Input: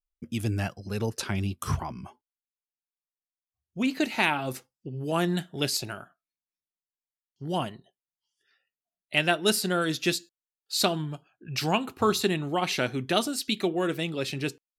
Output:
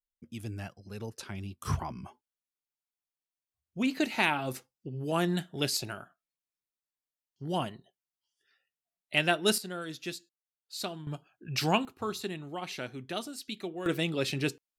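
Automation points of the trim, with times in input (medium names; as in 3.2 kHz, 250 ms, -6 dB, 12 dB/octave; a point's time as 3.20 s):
-10.5 dB
from 1.65 s -2.5 dB
from 9.58 s -12 dB
from 11.07 s -1 dB
from 11.85 s -11 dB
from 13.86 s 0 dB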